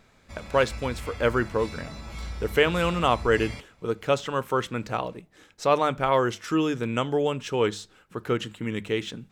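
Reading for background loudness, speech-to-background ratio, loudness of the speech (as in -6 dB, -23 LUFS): -39.0 LUFS, 12.5 dB, -26.5 LUFS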